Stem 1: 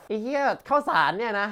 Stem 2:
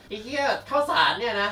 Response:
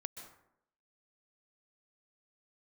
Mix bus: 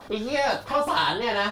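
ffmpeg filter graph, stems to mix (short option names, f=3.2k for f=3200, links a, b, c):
-filter_complex "[0:a]highshelf=f=1.5k:t=q:w=3:g=-8,alimiter=limit=-16.5dB:level=0:latency=1,asoftclip=type=tanh:threshold=-26dB,volume=1dB[a];[1:a]acrossover=split=420|3500[b][c][d];[b]acompressor=threshold=-35dB:ratio=4[e];[c]acompressor=threshold=-26dB:ratio=4[f];[d]acompressor=threshold=-32dB:ratio=4[g];[e][f][g]amix=inputs=3:normalize=0,volume=-1,adelay=6.8,volume=2dB[h];[a][h]amix=inputs=2:normalize=0"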